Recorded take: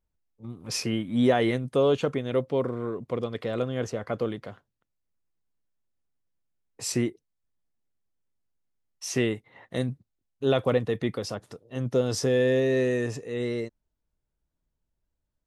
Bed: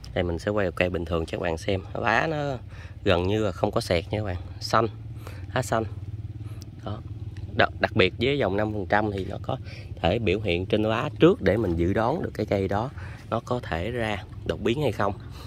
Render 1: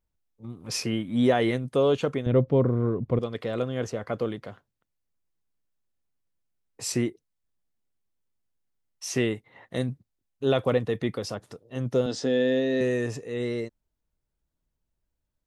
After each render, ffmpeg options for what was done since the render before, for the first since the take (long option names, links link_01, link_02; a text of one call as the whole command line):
ffmpeg -i in.wav -filter_complex "[0:a]asettb=1/sr,asplit=3[link_01][link_02][link_03];[link_01]atrim=end=2.264[link_04];[link_02]atrim=start=2.26:end=3.19,asetpts=PTS-STARTPTS,afade=type=in:duration=0.004:curve=qsin,afade=type=out:start_time=0.926:duration=0.004:curve=qsin,aemphasis=mode=reproduction:type=riaa[link_05];[link_03]atrim=start=3.186[link_06];[link_04][link_05]acrossfade=duration=0.004:curve1=hsin:curve2=qsin[link_07];[link_07][link_06]acrossfade=duration=0.004:curve1=qsin:curve2=hsin,asettb=1/sr,asplit=3[link_08][link_09][link_10];[link_08]atrim=end=12.064[link_11];[link_09]atrim=start=12.06:end=12.81,asetpts=PTS-STARTPTS,afade=type=in:duration=0.004:curve=qsin,afade=type=out:start_time=0.746:duration=0.004:curve=qsin,highpass=210,equalizer=frequency=250:width_type=q:width=4:gain=5,equalizer=frequency=400:width_type=q:width=4:gain=-4,equalizer=frequency=1100:width_type=q:width=4:gain=-8,equalizer=frequency=2300:width_type=q:width=4:gain=-5,equalizer=frequency=3700:width_type=q:width=4:gain=4,equalizer=frequency=5700:width_type=q:width=4:gain=-7,lowpass=frequency=6700:width=0.5412,lowpass=frequency=6700:width=1.3066[link_12];[link_10]atrim=start=12.806[link_13];[link_11][link_12]acrossfade=duration=0.004:curve1=hsin:curve2=qsin[link_14];[link_14][link_13]acrossfade=duration=0.004:curve1=qsin:curve2=hsin" out.wav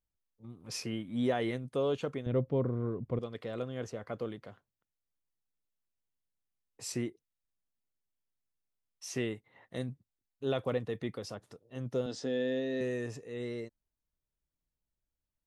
ffmpeg -i in.wav -af "volume=-9dB" out.wav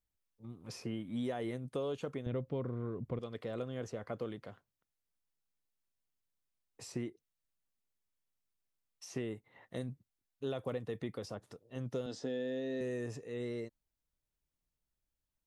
ffmpeg -i in.wav -filter_complex "[0:a]acrossover=split=1300|6700[link_01][link_02][link_03];[link_01]acompressor=threshold=-35dB:ratio=4[link_04];[link_02]acompressor=threshold=-53dB:ratio=4[link_05];[link_03]acompressor=threshold=-59dB:ratio=4[link_06];[link_04][link_05][link_06]amix=inputs=3:normalize=0" out.wav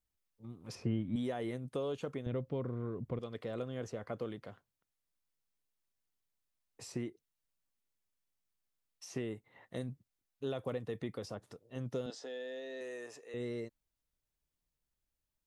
ffmpeg -i in.wav -filter_complex "[0:a]asettb=1/sr,asplit=3[link_01][link_02][link_03];[link_01]atrim=end=0.754[link_04];[link_02]atrim=start=0.75:end=1.16,asetpts=PTS-STARTPTS,afade=type=in:duration=0.004:curve=qsin,afade=type=out:start_time=0.406:duration=0.004:curve=qsin,aemphasis=mode=reproduction:type=bsi[link_05];[link_03]atrim=start=1.156[link_06];[link_04][link_05]acrossfade=duration=0.004:curve1=hsin:curve2=qsin[link_07];[link_07][link_06]acrossfade=duration=0.004:curve1=qsin:curve2=hsin,asettb=1/sr,asplit=3[link_08][link_09][link_10];[link_08]atrim=end=12.104[link_11];[link_09]atrim=start=12.1:end=13.34,asetpts=PTS-STARTPTS,afade=type=in:duration=0.004:curve=qsin,afade=type=out:start_time=1.236:duration=0.004:curve=qsin,highpass=570[link_12];[link_10]atrim=start=13.336[link_13];[link_11][link_12]acrossfade=duration=0.004:curve1=hsin:curve2=qsin[link_14];[link_14][link_13]acrossfade=duration=0.004:curve1=qsin:curve2=hsin" out.wav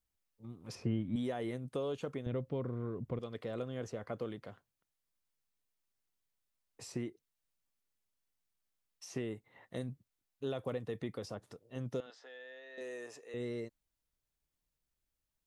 ffmpeg -i in.wav -filter_complex "[0:a]asettb=1/sr,asplit=3[link_01][link_02][link_03];[link_01]atrim=end=12.004[link_04];[link_02]atrim=start=12:end=12.78,asetpts=PTS-STARTPTS,afade=type=in:duration=0.004:curve=qsin,afade=type=out:start_time=0.776:duration=0.004:curve=qsin,bandpass=frequency=1600:width_type=q:width=1.1[link_05];[link_03]atrim=start=12.776[link_06];[link_04][link_05]acrossfade=duration=0.004:curve1=hsin:curve2=qsin[link_07];[link_07][link_06]acrossfade=duration=0.004:curve1=qsin:curve2=hsin" out.wav